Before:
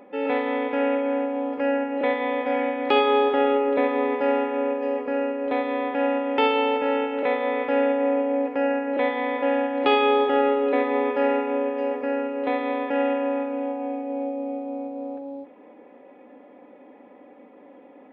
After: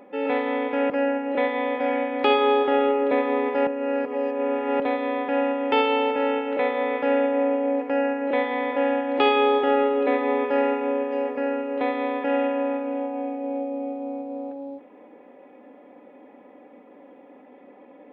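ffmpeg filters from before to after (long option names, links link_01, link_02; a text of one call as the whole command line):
ffmpeg -i in.wav -filter_complex "[0:a]asplit=4[link_01][link_02][link_03][link_04];[link_01]atrim=end=0.902[link_05];[link_02]atrim=start=1.558:end=4.332[link_06];[link_03]atrim=start=4.328:end=5.462,asetpts=PTS-STARTPTS,areverse[link_07];[link_04]atrim=start=5.458[link_08];[link_05][link_06]acrossfade=duration=0.004:curve1=hsin:curve2=hsin[link_09];[link_09][link_07]acrossfade=duration=0.004:curve1=hsin:curve2=hsin[link_10];[link_10][link_08]acrossfade=duration=0.004:curve1=hsin:curve2=hsin" out.wav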